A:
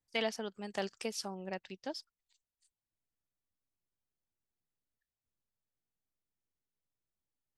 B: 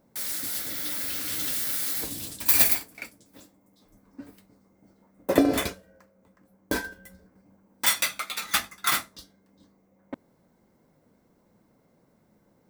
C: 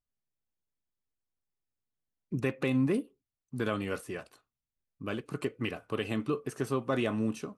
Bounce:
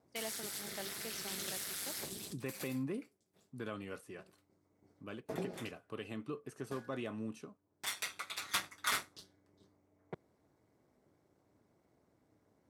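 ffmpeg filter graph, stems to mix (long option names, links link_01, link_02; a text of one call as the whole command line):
ffmpeg -i stem1.wav -i stem2.wav -i stem3.wav -filter_complex "[0:a]volume=-9.5dB[link_01];[1:a]aeval=exprs='val(0)*sin(2*PI*100*n/s)':channel_layout=same,lowpass=11000,volume=-5dB[link_02];[2:a]volume=-11dB,asplit=2[link_03][link_04];[link_04]apad=whole_len=559778[link_05];[link_02][link_05]sidechaincompress=threshold=-51dB:ratio=16:attack=21:release=1110[link_06];[link_01][link_06][link_03]amix=inputs=3:normalize=0,asoftclip=type=tanh:threshold=-20.5dB,highpass=83" out.wav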